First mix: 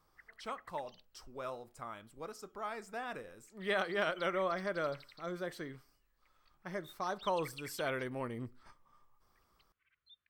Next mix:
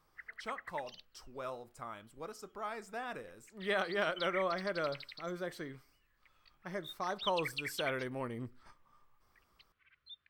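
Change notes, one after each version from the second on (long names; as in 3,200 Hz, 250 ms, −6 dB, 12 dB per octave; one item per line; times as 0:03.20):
background +9.0 dB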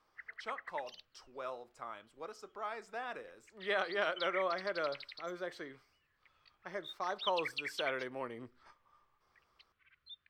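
speech: add three-way crossover with the lows and the highs turned down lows −13 dB, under 300 Hz, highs −13 dB, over 6,400 Hz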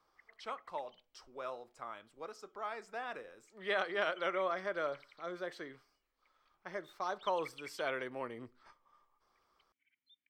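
background: add formant filter i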